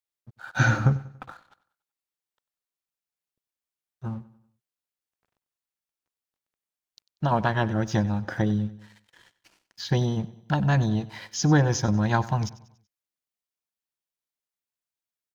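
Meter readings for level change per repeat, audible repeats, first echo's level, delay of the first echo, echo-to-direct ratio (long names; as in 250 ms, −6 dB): −7.0 dB, 3, −18.5 dB, 95 ms, −17.5 dB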